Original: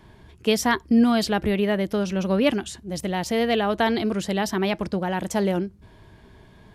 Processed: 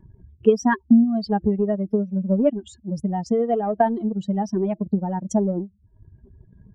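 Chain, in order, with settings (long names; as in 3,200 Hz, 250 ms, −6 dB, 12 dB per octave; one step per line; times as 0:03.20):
expanding power law on the bin magnitudes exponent 2.8
transient designer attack +8 dB, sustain −10 dB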